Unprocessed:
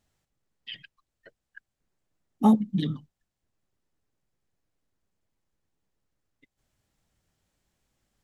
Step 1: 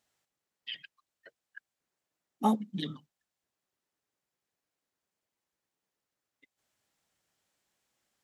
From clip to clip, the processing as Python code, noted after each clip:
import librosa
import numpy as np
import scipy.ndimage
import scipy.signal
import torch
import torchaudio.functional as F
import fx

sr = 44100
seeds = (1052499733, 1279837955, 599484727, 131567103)

y = fx.highpass(x, sr, hz=590.0, slope=6)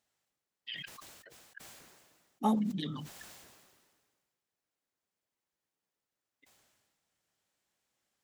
y = fx.sustainer(x, sr, db_per_s=35.0)
y = y * 10.0 ** (-3.0 / 20.0)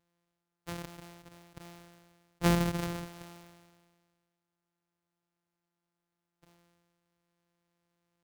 y = np.r_[np.sort(x[:len(x) // 256 * 256].reshape(-1, 256), axis=1).ravel(), x[len(x) // 256 * 256:]]
y = y * 10.0 ** (2.5 / 20.0)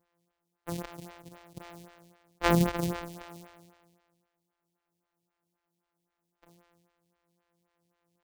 y = fx.stagger_phaser(x, sr, hz=3.8)
y = y * 10.0 ** (6.5 / 20.0)